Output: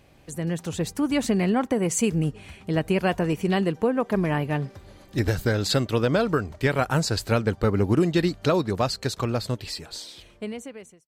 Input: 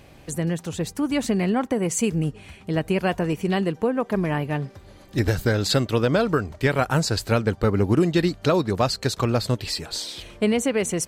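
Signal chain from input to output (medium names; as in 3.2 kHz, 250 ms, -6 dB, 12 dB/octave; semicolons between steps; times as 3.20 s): fade out at the end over 2.59 s; level rider gain up to 8 dB; trim -7.5 dB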